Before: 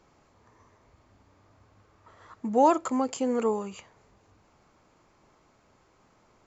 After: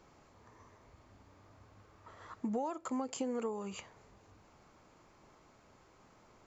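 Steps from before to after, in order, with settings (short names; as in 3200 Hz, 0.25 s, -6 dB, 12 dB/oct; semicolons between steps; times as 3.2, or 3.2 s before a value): compressor 16:1, threshold -33 dBFS, peak gain reduction 19 dB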